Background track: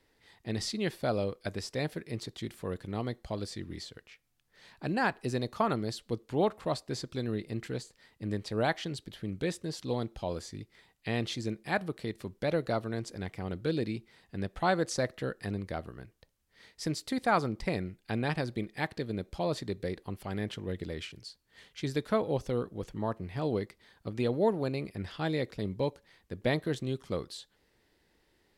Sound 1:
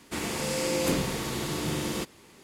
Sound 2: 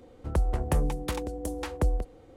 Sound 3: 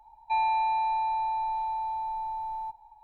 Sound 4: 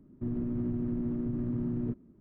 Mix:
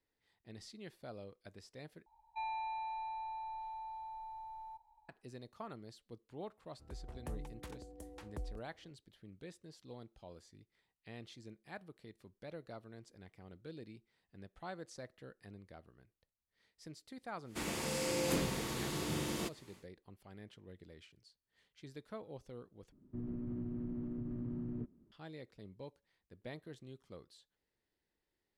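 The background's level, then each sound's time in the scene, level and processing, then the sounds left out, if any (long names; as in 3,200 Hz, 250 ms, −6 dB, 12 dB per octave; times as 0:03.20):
background track −18.5 dB
0:02.06: overwrite with 3 −12 dB + parametric band 340 Hz −8 dB 1.9 octaves
0:06.55: mix in 2 −18 dB + fade in at the beginning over 0.78 s
0:17.44: mix in 1 −7.5 dB, fades 0.10 s
0:22.92: overwrite with 4 −9 dB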